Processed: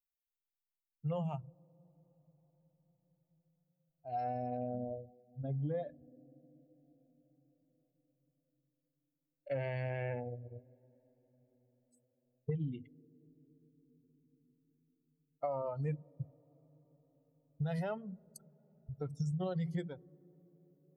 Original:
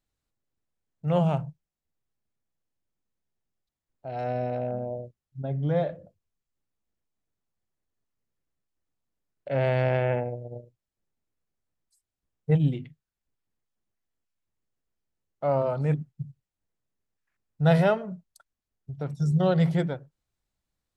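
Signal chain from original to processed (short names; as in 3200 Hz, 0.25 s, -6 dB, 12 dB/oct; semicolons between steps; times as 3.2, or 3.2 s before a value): per-bin expansion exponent 2; limiter -23 dBFS, peak gain reduction 11 dB; compressor 10:1, threshold -41 dBFS, peak gain reduction 15 dB; on a send: band-pass 280 Hz, Q 2.6 + reverb RT60 5.6 s, pre-delay 41 ms, DRR 29.5 dB; on the sum: gain +7 dB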